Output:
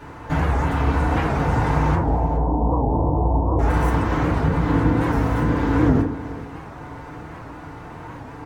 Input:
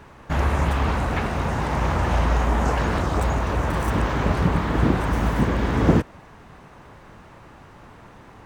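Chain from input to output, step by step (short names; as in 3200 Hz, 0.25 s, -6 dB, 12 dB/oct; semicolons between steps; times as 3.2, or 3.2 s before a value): 1.95–3.6 steep low-pass 1000 Hz 72 dB/oct; compressor 4:1, threshold -27 dBFS, peak gain reduction 13.5 dB; echo 0.417 s -16 dB; FDN reverb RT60 0.74 s, low-frequency decay 1×, high-frequency decay 0.3×, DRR -7 dB; record warp 78 rpm, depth 160 cents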